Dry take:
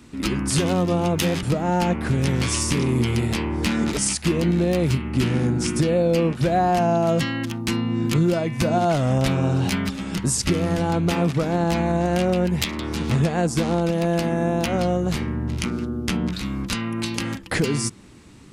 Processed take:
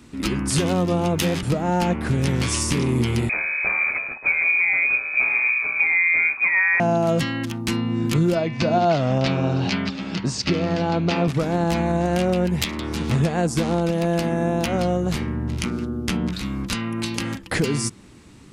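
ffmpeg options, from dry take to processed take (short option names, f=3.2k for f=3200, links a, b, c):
-filter_complex "[0:a]asettb=1/sr,asplit=3[a][b][c];[a]atrim=end=3.294[d];[b]atrim=start=3.29:end=6.8,asetpts=PTS-STARTPTS,afade=t=in:d=0.004:c=qsin,afade=t=out:st=3.506:d=0.004:c=qsin,lowpass=f=2.2k:t=q:w=0.5098,lowpass=f=2.2k:t=q:w=0.6013,lowpass=f=2.2k:t=q:w=0.9,lowpass=f=2.2k:t=q:w=2.563,afreqshift=-2600[e];[c]atrim=start=6.796[f];[d][e]acrossfade=d=0.004:c1=hsin:c2=qsin[g];[g][f]acrossfade=d=0.004:c1=qsin:c2=hsin,asettb=1/sr,asplit=3[h][i][j];[h]atrim=end=8.354[k];[i]atrim=start=8.35:end=11.28,asetpts=PTS-STARTPTS,afade=t=in:d=0.004:c=qsin,afade=t=out:st=2.926:d=0.004:c=qsin,highpass=110,equalizer=f=660:t=q:w=4:g=3,equalizer=f=2.6k:t=q:w=4:g=3,equalizer=f=4.5k:t=q:w=4:g=5,lowpass=f=5.7k:w=0.5412,lowpass=f=5.7k:w=1.3066[l];[j]atrim=start=11.276[m];[k][l]acrossfade=d=0.004:c1=hsin:c2=qsin[n];[n][m]acrossfade=d=0.004:c1=qsin:c2=hsin"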